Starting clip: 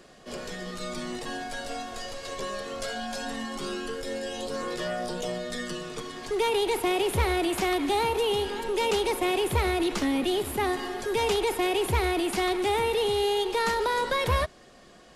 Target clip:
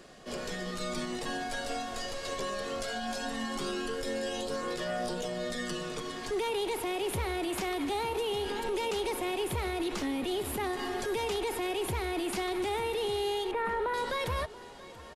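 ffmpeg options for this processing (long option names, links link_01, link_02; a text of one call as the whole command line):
ffmpeg -i in.wav -filter_complex "[0:a]asettb=1/sr,asplit=3[link_01][link_02][link_03];[link_01]atrim=end=13.514[link_04];[link_02]atrim=start=13.51:end=13.94,asetpts=PTS-STARTPTS,afade=type=in:duration=0.004:curve=qsin,afade=type=out:start_time=0.426:duration=0.004:curve=qsin,lowpass=frequency=2200:width=0.5412,lowpass=frequency=2200:width=1.3066[link_05];[link_03]atrim=start=13.936[link_06];[link_04][link_05]acrossfade=duration=0.004:curve1=hsin:curve2=qsin[link_07];[link_07][link_06]acrossfade=duration=0.004:curve1=qsin:curve2=hsin,alimiter=level_in=1dB:limit=-24dB:level=0:latency=1:release=98,volume=-1dB,aecho=1:1:681|1362|2043|2724|3405:0.112|0.0662|0.0391|0.023|0.0136" out.wav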